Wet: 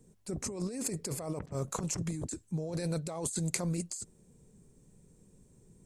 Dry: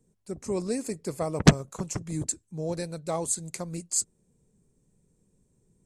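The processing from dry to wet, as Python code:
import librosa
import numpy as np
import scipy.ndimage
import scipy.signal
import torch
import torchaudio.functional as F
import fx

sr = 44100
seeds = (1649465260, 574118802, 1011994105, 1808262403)

y = fx.over_compress(x, sr, threshold_db=-37.0, ratio=-1.0)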